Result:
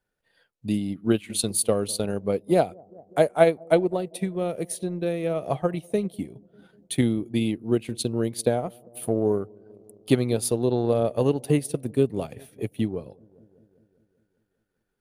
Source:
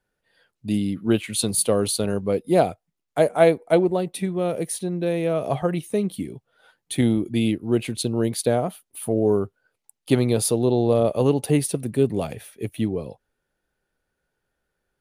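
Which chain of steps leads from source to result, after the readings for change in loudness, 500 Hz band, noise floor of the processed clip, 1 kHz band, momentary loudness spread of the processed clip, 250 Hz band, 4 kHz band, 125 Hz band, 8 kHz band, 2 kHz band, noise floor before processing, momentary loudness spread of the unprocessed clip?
-3.0 dB, -2.5 dB, -77 dBFS, -2.5 dB, 9 LU, -3.0 dB, -3.5 dB, -3.0 dB, -3.5 dB, -2.5 dB, -80 dBFS, 11 LU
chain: analogue delay 0.197 s, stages 1024, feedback 63%, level -20.5 dB; transient shaper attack +4 dB, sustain -6 dB; gain -4 dB

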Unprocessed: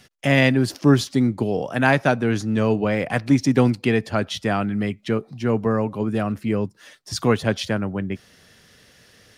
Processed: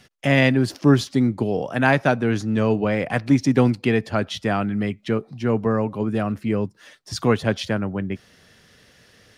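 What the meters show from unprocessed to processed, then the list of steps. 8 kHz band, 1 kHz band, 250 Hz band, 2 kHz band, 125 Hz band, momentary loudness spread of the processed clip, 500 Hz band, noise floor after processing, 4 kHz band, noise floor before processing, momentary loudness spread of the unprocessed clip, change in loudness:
-3.0 dB, 0.0 dB, 0.0 dB, -0.5 dB, 0.0 dB, 8 LU, 0.0 dB, -55 dBFS, -1.5 dB, -54 dBFS, 8 LU, 0.0 dB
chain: high shelf 6000 Hz -5 dB

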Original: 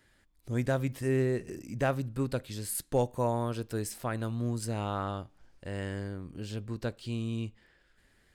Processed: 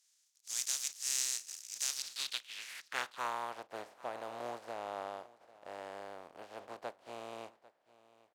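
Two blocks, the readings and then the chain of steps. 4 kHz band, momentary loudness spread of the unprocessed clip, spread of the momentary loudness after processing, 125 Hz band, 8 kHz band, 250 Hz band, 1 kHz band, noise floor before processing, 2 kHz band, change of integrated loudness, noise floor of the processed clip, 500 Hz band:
+6.0 dB, 11 LU, 16 LU, -34.0 dB, +6.0 dB, -22.5 dB, -4.0 dB, -67 dBFS, -3.0 dB, -6.0 dB, -74 dBFS, -13.0 dB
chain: spectral contrast lowered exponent 0.26; band-pass sweep 6300 Hz -> 670 Hz, 1.87–3.69; echo 0.796 s -20 dB; gain +1 dB

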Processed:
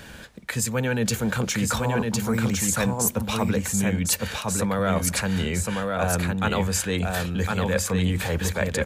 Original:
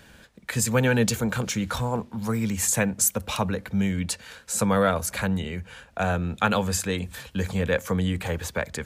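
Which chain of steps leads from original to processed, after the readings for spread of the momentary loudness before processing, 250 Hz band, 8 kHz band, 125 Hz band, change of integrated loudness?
10 LU, +1.5 dB, +1.5 dB, +2.0 dB, +1.0 dB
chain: reverse; compressor 5:1, threshold -31 dBFS, peak gain reduction 13.5 dB; reverse; echo 1.058 s -3 dB; gain +8.5 dB

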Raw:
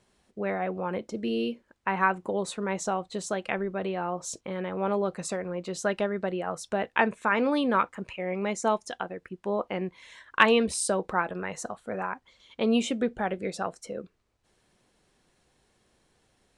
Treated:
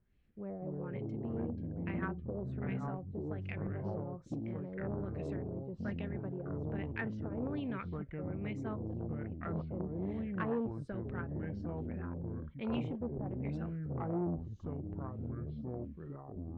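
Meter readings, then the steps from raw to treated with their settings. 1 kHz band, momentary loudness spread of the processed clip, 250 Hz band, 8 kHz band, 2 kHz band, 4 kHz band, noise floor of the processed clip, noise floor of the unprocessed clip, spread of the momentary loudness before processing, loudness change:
-18.5 dB, 5 LU, -6.5 dB, under -35 dB, -17.5 dB, under -20 dB, -50 dBFS, -70 dBFS, 11 LU, -10.5 dB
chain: LFO low-pass sine 1.2 Hz 560–2500 Hz; echoes that change speed 0.12 s, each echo -5 st, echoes 3; passive tone stack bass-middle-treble 10-0-1; core saturation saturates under 480 Hz; gain +7.5 dB

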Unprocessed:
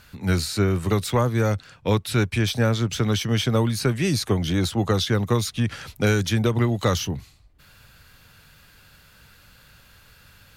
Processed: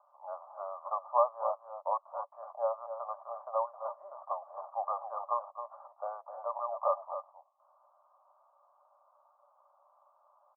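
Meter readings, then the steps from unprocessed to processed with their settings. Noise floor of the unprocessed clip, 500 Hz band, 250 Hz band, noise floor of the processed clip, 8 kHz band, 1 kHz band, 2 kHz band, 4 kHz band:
-53 dBFS, -10.0 dB, under -40 dB, -69 dBFS, under -40 dB, -1.5 dB, under -35 dB, under -40 dB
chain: tracing distortion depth 0.032 ms; Chebyshev band-pass 570–1200 Hz, order 5; echo 0.266 s -10 dB

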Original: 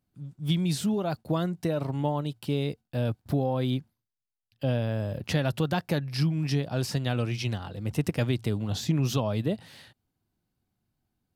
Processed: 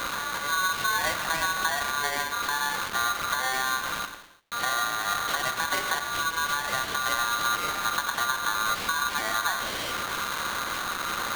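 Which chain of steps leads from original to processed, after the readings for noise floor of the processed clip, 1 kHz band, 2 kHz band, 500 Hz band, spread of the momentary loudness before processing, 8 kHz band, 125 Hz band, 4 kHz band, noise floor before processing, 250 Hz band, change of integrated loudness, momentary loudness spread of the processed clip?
-34 dBFS, +12.5 dB, +15.5 dB, -6.5 dB, 5 LU, +12.5 dB, -20.5 dB, +9.0 dB, -84 dBFS, -14.5 dB, +2.5 dB, 4 LU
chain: delta modulation 16 kbps, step -28 dBFS; compressor, threshold -27 dBFS, peak gain reduction 7 dB; HPF 44 Hz; non-linear reverb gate 0.37 s falling, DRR 5.5 dB; polarity switched at an audio rate 1300 Hz; gain +3 dB

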